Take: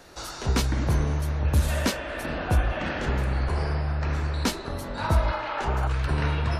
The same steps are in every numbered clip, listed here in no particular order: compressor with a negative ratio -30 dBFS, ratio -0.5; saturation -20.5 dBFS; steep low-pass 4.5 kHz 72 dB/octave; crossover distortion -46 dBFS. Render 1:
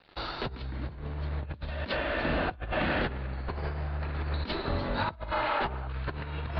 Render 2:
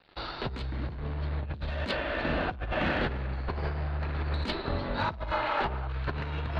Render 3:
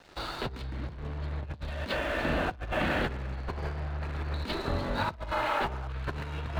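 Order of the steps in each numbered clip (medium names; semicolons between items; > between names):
crossover distortion > compressor with a negative ratio > saturation > steep low-pass; crossover distortion > steep low-pass > saturation > compressor with a negative ratio; saturation > compressor with a negative ratio > steep low-pass > crossover distortion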